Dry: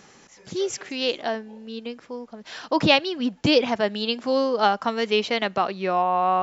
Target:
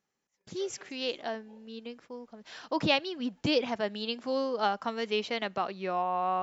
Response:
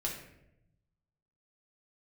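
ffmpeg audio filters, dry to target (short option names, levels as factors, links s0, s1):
-af "agate=range=0.0631:threshold=0.00447:ratio=16:detection=peak,volume=0.376"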